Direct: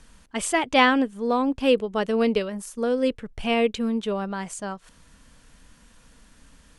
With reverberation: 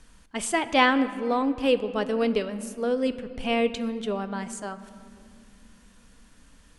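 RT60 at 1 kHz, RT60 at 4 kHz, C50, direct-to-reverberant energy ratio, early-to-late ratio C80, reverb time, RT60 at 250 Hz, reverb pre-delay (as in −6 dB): 2.1 s, 1.3 s, 13.5 dB, 11.0 dB, 14.5 dB, 2.4 s, 4.1 s, 3 ms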